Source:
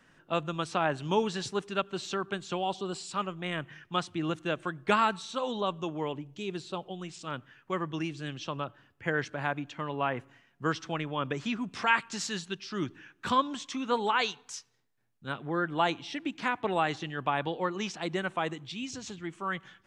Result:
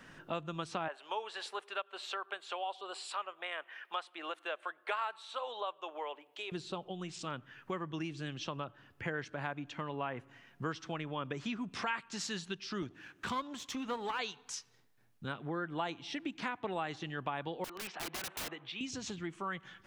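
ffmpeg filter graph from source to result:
-filter_complex "[0:a]asettb=1/sr,asplit=3[a][b][c];[a]atrim=end=0.884[d];[b]atrim=start=0.88:end=6.52,asetpts=PTS-STARTPTS,afade=t=in:d=0.004:c=qsin,afade=t=out:st=5.636:d=0.004:c=qsin,highpass=f=540:w=0.5412,highpass=f=540:w=1.3066,equalizer=f=6.1k:t=o:w=0.76:g=-12[e];[c]atrim=start=6.516[f];[d][e]acrossfade=d=0.004:c1=hsin:c2=qsin[g];[g][f]acrossfade=d=0.004:c1=qsin:c2=hsin,asettb=1/sr,asplit=3[h][i][j];[h]atrim=end=12.824[k];[i]atrim=start=12.82:end=14.19,asetpts=PTS-STARTPTS,afade=t=in:d=0.004:c=qsin,afade=t=out:st=1.366:d=0.004:c=qsin,aeval=exprs='if(lt(val(0),0),0.447*val(0),val(0))':c=same,highpass=47,equalizer=f=7.1k:t=o:w=0.36:g=3[l];[j]atrim=start=14.186[m];[k][l]acrossfade=d=0.004:c1=hsin:c2=qsin[n];[n][m]acrossfade=d=0.004:c1=qsin:c2=hsin,asettb=1/sr,asplit=3[o][p][q];[o]atrim=end=17.644[r];[p]atrim=start=17.64:end=18.81,asetpts=PTS-STARTPTS,afade=t=in:d=0.004:c=qsin,afade=t=out:st=1.166:d=0.004:c=qsin,highpass=f=91:w=0.5412,highpass=f=91:w=1.3066,acrossover=split=450 3400:gain=0.141 1 0.0794[s][t][u];[s][t][u]amix=inputs=3:normalize=0,aeval=exprs='(mod(53.1*val(0)+1,2)-1)/53.1':c=same[v];[q]atrim=start=18.806[w];[r][v]acrossfade=d=0.004:c1=hsin:c2=qsin[x];[x][w]acrossfade=d=0.004:c1=qsin:c2=hsin,equalizer=f=7.7k:w=2.2:g=-2.5,acompressor=threshold=-49dB:ratio=2.5,volume=7dB"

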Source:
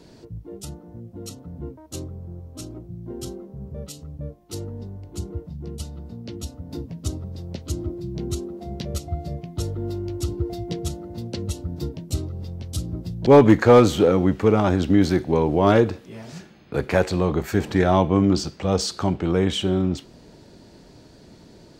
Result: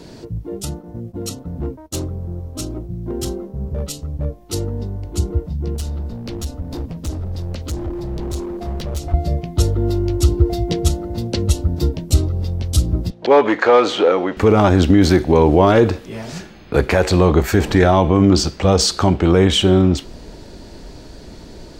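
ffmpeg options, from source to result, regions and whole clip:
-filter_complex "[0:a]asettb=1/sr,asplit=3[a][b][c];[a]atrim=end=0.634[d];[b]atrim=start=0.63:end=4.25,asetpts=PTS-STARTPTS,afade=t=in:d=0.004:c=qsin,afade=t=out:st=3.616:d=0.004:c=qsin,agate=range=-33dB:threshold=-42dB:ratio=3:release=100:detection=peak,volume=27dB,asoftclip=hard,volume=-27dB[e];[c]atrim=start=4.246[f];[d][e]acrossfade=d=0.004:c1=hsin:c2=qsin[g];[g][f]acrossfade=d=0.004:c1=qsin:c2=hsin,asettb=1/sr,asplit=3[h][i][j];[h]atrim=end=5.754[k];[i]atrim=start=5.75:end=9.14,asetpts=PTS-STARTPTS,afade=t=in:d=0.004:c=qsin,afade=t=out:st=3.386:d=0.004:c=qsin,acompressor=threshold=-31dB:ratio=2:attack=3.2:release=140:knee=1:detection=peak,asoftclip=type=hard:threshold=-32.5dB[l];[j]atrim=start=9.136[m];[k][l]acrossfade=d=0.004:c1=hsin:c2=qsin[n];[n][m]acrossfade=d=0.004:c1=qsin:c2=hsin,asettb=1/sr,asplit=3[o][p][q];[o]atrim=end=13.104[r];[p]atrim=start=13.1:end=14.37,asetpts=PTS-STARTPTS,afade=t=in:d=0.004:c=qsin,afade=t=out:st=1.266:d=0.004:c=qsin,acompressor=threshold=-15dB:ratio=2:attack=3.2:release=140:knee=1:detection=peak,highpass=480,lowpass=3.9k[s];[q]atrim=start=14.366[t];[r][s]acrossfade=d=0.004:c1=hsin:c2=qsin[u];[u][t]acrossfade=d=0.004:c1=qsin:c2=hsin,asubboost=boost=5:cutoff=54,alimiter=level_in=11dB:limit=-1dB:release=50:level=0:latency=1,volume=-1dB"

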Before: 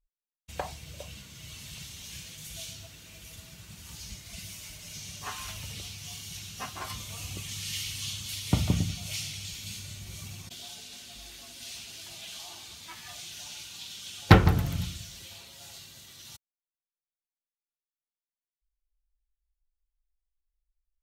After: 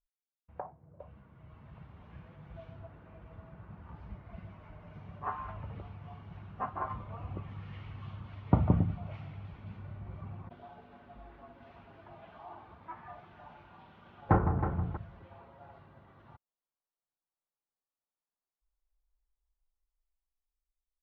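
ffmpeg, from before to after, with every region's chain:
-filter_complex "[0:a]asettb=1/sr,asplit=3[a][b][c];[a]atrim=end=0.604[d];[b]atrim=start=0.6:end=1,asetpts=PTS-STARTPTS,afade=t=in:d=0.004:c=qsin,afade=t=out:st=0.396:d=0.004:c=qsin,highpass=f=100:w=0.5412,highpass=f=100:w=1.3066,adynamicsmooth=sensitivity=6.5:basefreq=660,asplit=2[e][f];[f]adelay=12,volume=-13dB[g];[e][g]amix=inputs=2:normalize=0,atrim=end_sample=17640[h];[c]atrim=start=0.996[i];[d][h]acrossfade=d=0.004:c1=hsin:c2=qsin[j];[j][i]acrossfade=d=0.004:c1=qsin:c2=hsin,asettb=1/sr,asplit=3[k][l][m];[k]atrim=end=12.924[n];[l]atrim=start=12.92:end=14.97,asetpts=PTS-STARTPTS,afade=t=in:d=0.004:c=qsin,afade=t=out:st=2.046:d=0.004:c=qsin,aecho=1:1:318|636|954:0.237|0.0617|0.016,atrim=end_sample=90405,acompressor=threshold=-39dB:ratio=1.5:attack=3.2:release=140:knee=1:detection=peak,asplit=2[o][p];[p]adelay=35,volume=-11dB[q];[o][q]amix=inputs=2:normalize=0,atrim=end_sample=90405[r];[m]atrim=start=14.966[s];[n][r]acrossfade=d=0.004:c1=hsin:c2=qsin[t];[t][s]acrossfade=d=0.004:c1=qsin:c2=hsin,lowpass=f=1.1k:w=0.5412,lowpass=f=1.1k:w=1.3066,tiltshelf=f=840:g=-6,dynaudnorm=f=680:g=5:m=11dB,volume=-5dB"

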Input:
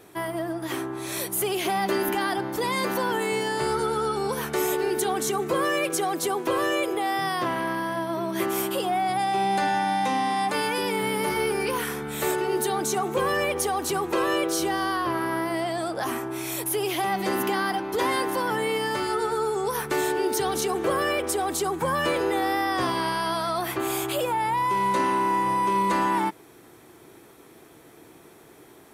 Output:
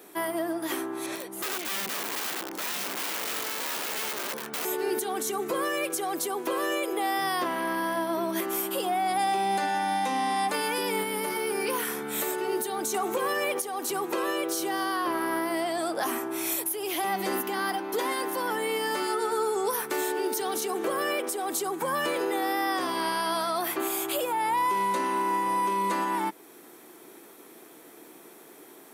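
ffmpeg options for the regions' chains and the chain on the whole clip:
-filter_complex "[0:a]asettb=1/sr,asplit=3[a][b][c];[a]atrim=end=1.064[d];[b]atrim=start=1.06:end=4.65,asetpts=PTS-STARTPTS,afade=t=in:d=0.004:c=qsin,afade=t=out:st=3.586:d=0.004:c=qsin,aemphasis=mode=reproduction:type=75fm,aeval=exprs='(mod(14.1*val(0)+1,2)-1)/14.1':c=same[e];[c]atrim=start=4.646[f];[d][e]acrossfade=d=0.004:c1=hsin:c2=qsin[g];[g][f]acrossfade=d=0.004:c1=qsin:c2=hsin,asettb=1/sr,asplit=3[h][i][j];[h]atrim=end=12.944[k];[i]atrim=start=12.94:end=13.62,asetpts=PTS-STARTPTS,afade=t=in:d=0.004:c=qsin,afade=t=out:st=0.676:d=0.004:c=qsin,highpass=f=220:p=1,acontrast=65[l];[j]atrim=start=13.616[m];[k][l]acrossfade=d=0.004:c1=hsin:c2=qsin[n];[n][m]acrossfade=d=0.004:c1=qsin:c2=hsin,asettb=1/sr,asplit=3[o][p][q];[o]atrim=end=17.584[r];[p]atrim=start=17.58:end=20.79,asetpts=PTS-STARTPTS,afade=t=in:d=0.004:c=qsin,afade=t=out:st=3.206:d=0.004:c=qsin,highpass=150,asoftclip=type=hard:threshold=-17.5dB[s];[q]atrim=start=20.786[t];[r][s]acrossfade=d=0.004:c1=hsin:c2=qsin[u];[u][t]acrossfade=d=0.004:c1=qsin:c2=hsin,highpass=f=200:w=0.5412,highpass=f=200:w=1.3066,highshelf=f=11k:g=10.5,alimiter=limit=-19dB:level=0:latency=1:release=387"

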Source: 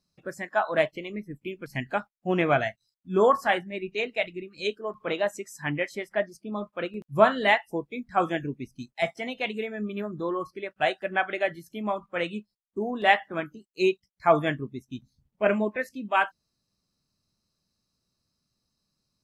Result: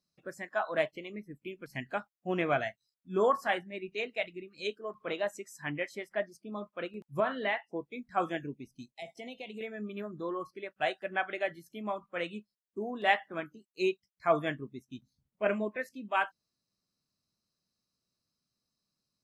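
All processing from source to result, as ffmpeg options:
-filter_complex "[0:a]asettb=1/sr,asplit=3[a][b][c];[a]atrim=end=7.204[d];[b]atrim=start=7.2:end=7.81,asetpts=PTS-STARTPTS,afade=t=in:d=0.004:c=qsin,afade=t=out:st=0.606:d=0.004:c=qsin,acompressor=threshold=-21dB:ratio=2:attack=3.2:release=140:knee=1:detection=peak,highpass=150,lowpass=3.2k[e];[c]atrim=start=7.806[f];[d][e]acrossfade=d=0.004:c1=hsin:c2=qsin[g];[g][f]acrossfade=d=0.004:c1=qsin:c2=hsin,asettb=1/sr,asplit=3[h][i][j];[h]atrim=end=8.534[k];[i]atrim=start=8.53:end=9.61,asetpts=PTS-STARTPTS,afade=t=in:d=0.004:c=qsin,afade=t=out:st=1.076:d=0.004:c=qsin,acompressor=threshold=-31dB:ratio=5:attack=3.2:release=140:knee=1:detection=peak,asuperstop=centerf=1400:order=4:qfactor=1[l];[j]atrim=start=9.606[m];[k][l]acrossfade=d=0.004:c1=hsin:c2=qsin[n];[n][m]acrossfade=d=0.004:c1=qsin:c2=hsin,lowshelf=f=89:g=-10.5,bandreject=f=860:w=19,volume=-6dB"

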